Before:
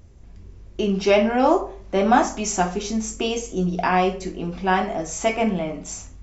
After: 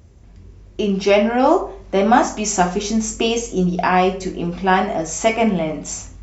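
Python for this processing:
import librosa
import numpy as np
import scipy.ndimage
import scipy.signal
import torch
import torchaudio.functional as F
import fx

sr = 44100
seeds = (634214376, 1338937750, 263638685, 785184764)

p1 = scipy.signal.sosfilt(scipy.signal.butter(2, 45.0, 'highpass', fs=sr, output='sos'), x)
p2 = fx.rider(p1, sr, range_db=3, speed_s=0.5)
p3 = p1 + (p2 * librosa.db_to_amplitude(0.0))
y = p3 * librosa.db_to_amplitude(-2.0)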